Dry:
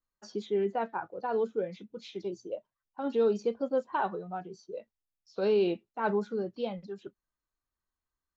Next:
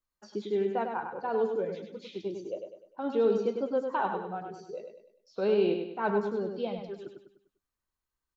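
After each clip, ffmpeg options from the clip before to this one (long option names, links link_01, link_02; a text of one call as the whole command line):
ffmpeg -i in.wav -filter_complex "[0:a]acrossover=split=4100[link_01][link_02];[link_02]acompressor=threshold=-59dB:ratio=4:attack=1:release=60[link_03];[link_01][link_03]amix=inputs=2:normalize=0,aecho=1:1:100|200|300|400|500:0.501|0.21|0.0884|0.0371|0.0156" out.wav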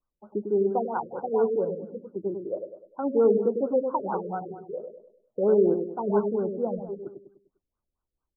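ffmpeg -i in.wav -af "afftfilt=real='re*lt(b*sr/1024,580*pow(1600/580,0.5+0.5*sin(2*PI*4.4*pts/sr)))':imag='im*lt(b*sr/1024,580*pow(1600/580,0.5+0.5*sin(2*PI*4.4*pts/sr)))':win_size=1024:overlap=0.75,volume=5dB" out.wav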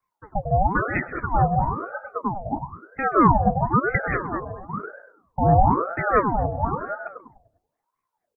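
ffmpeg -i in.wav -af "aecho=1:1:129|258|387:0.119|0.0475|0.019,aeval=exprs='val(0)*sin(2*PI*670*n/s+670*0.6/1*sin(2*PI*1*n/s))':channel_layout=same,volume=7dB" out.wav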